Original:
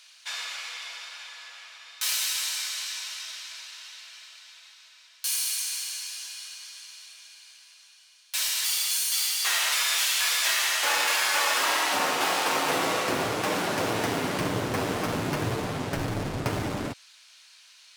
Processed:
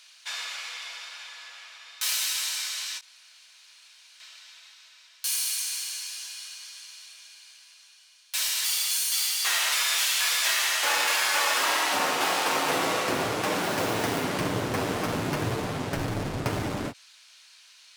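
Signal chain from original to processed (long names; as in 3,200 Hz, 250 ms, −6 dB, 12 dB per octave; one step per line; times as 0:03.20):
0:03.01–0:04.20: fill with room tone
0:13.62–0:14.24: noise that follows the level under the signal 16 dB
every ending faded ahead of time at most 360 dB per second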